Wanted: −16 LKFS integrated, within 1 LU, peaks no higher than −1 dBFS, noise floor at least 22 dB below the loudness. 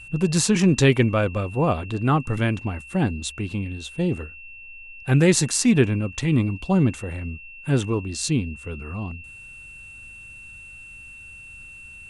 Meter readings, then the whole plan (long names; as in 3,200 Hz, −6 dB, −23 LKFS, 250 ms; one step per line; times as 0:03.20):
interfering tone 2,700 Hz; level of the tone −40 dBFS; integrated loudness −22.5 LKFS; sample peak −5.0 dBFS; target loudness −16.0 LKFS
→ notch filter 2,700 Hz, Q 30
level +6.5 dB
brickwall limiter −1 dBFS